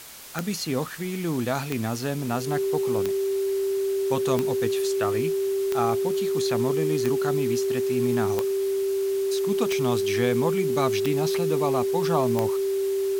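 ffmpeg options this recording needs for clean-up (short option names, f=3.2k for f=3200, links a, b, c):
-af "adeclick=t=4,bandreject=f=390:w=30,afwtdn=0.0079"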